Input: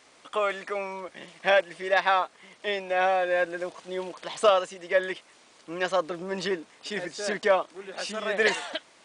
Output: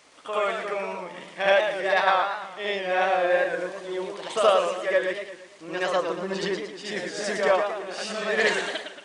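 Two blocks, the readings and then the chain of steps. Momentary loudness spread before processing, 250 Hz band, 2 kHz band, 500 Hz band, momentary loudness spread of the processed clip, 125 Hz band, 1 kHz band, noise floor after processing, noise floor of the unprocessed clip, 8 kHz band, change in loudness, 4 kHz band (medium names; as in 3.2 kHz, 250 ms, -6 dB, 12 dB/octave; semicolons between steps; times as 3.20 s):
13 LU, +2.5 dB, +2.0 dB, +2.5 dB, 11 LU, +2.5 dB, +2.0 dB, -47 dBFS, -58 dBFS, +2.0 dB, +2.0 dB, +2.0 dB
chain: reverse echo 73 ms -5.5 dB; modulated delay 114 ms, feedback 48%, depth 160 cents, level -7 dB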